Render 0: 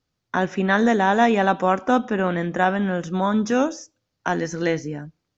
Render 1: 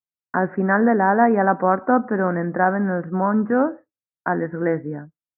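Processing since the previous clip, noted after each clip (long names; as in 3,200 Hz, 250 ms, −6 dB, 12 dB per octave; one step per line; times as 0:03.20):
high-pass filter 100 Hz
downward expander −29 dBFS
Butterworth low-pass 1,800 Hz 48 dB per octave
level +1.5 dB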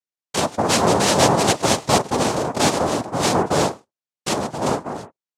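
cochlear-implant simulation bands 2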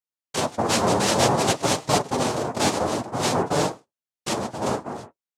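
flanger 0.54 Hz, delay 6.3 ms, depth 3.5 ms, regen −42%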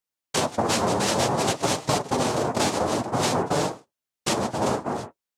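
downward compressor, threshold −25 dBFS, peak gain reduction 10.5 dB
level +5 dB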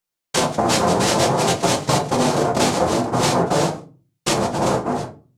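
rectangular room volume 170 cubic metres, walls furnished, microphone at 0.84 metres
level +4 dB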